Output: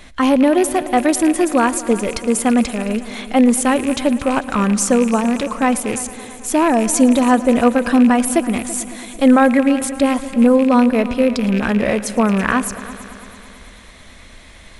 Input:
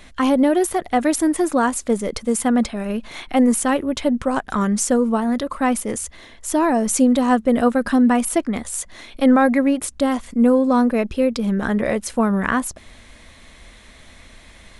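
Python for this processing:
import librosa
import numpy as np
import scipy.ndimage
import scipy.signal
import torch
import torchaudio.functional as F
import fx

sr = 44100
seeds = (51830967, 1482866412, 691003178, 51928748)

y = fx.rattle_buzz(x, sr, strikes_db=-34.0, level_db=-20.0)
y = fx.echo_heads(y, sr, ms=111, heads='all three', feedback_pct=60, wet_db=-20.0)
y = F.gain(torch.from_numpy(y), 3.0).numpy()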